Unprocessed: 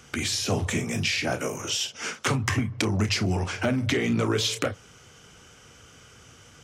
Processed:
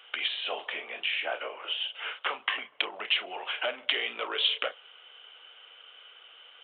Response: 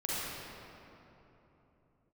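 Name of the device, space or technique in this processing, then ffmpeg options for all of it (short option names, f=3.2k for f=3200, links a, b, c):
musical greeting card: -filter_complex "[0:a]asettb=1/sr,asplit=3[a][b][c];[a]atrim=end=0.674[d];[b]atrim=start=0.67:end=2.39,asetpts=PTS-STARTPTS,afade=t=in:d=0.004:c=qsin,afade=t=out:st=1.716:d=0.004:c=qsin,acrossover=split=2500[e][f];[f]acompressor=threshold=-41dB:ratio=4:attack=1:release=60[g];[e][g]amix=inputs=2:normalize=0[h];[c]atrim=start=2.386[i];[d][h]acrossfade=d=0.004:c1=hsin:c2=qsin[j];[j][i]acrossfade=d=0.004:c1=qsin:c2=hsin,aresample=8000,aresample=44100,highpass=f=540:w=0.5412,highpass=f=540:w=1.3066,equalizer=f=3k:t=o:w=0.42:g=11,volume=-3dB"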